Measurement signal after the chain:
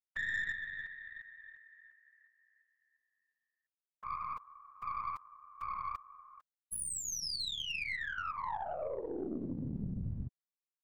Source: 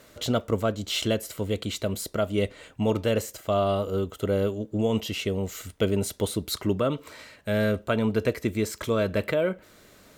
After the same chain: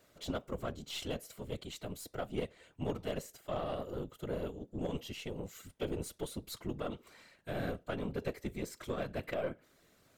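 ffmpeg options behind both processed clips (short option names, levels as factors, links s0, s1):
-af "afftfilt=real='hypot(re,im)*cos(2*PI*random(0))':imag='hypot(re,im)*sin(2*PI*random(1))':win_size=512:overlap=0.75,aeval=exprs='0.188*(cos(1*acos(clip(val(0)/0.188,-1,1)))-cos(1*PI/2))+0.0133*(cos(3*acos(clip(val(0)/0.188,-1,1)))-cos(3*PI/2))+0.00668*(cos(8*acos(clip(val(0)/0.188,-1,1)))-cos(8*PI/2))':c=same,volume=0.531"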